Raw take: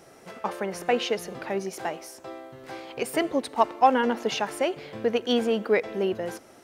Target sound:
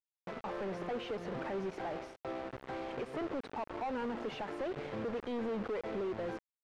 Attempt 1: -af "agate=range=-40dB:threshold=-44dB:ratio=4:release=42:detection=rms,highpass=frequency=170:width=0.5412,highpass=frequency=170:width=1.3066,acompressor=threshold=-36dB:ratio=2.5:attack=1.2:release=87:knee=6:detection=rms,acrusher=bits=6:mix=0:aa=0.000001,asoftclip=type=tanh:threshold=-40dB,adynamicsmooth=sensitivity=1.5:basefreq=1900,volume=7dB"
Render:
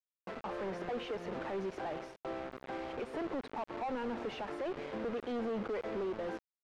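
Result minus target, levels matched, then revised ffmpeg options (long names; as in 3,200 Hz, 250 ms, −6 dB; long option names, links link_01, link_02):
125 Hz band −2.5 dB
-af "agate=range=-40dB:threshold=-44dB:ratio=4:release=42:detection=rms,highpass=frequency=57:width=0.5412,highpass=frequency=57:width=1.3066,acompressor=threshold=-36dB:ratio=2.5:attack=1.2:release=87:knee=6:detection=rms,acrusher=bits=6:mix=0:aa=0.000001,asoftclip=type=tanh:threshold=-40dB,adynamicsmooth=sensitivity=1.5:basefreq=1900,volume=7dB"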